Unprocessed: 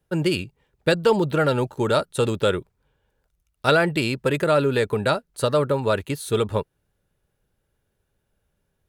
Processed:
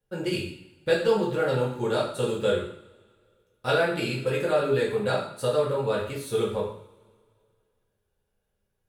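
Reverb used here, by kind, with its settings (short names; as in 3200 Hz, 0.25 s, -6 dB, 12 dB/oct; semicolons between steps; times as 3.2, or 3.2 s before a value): two-slope reverb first 0.59 s, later 2.3 s, from -24 dB, DRR -6 dB; gain -12 dB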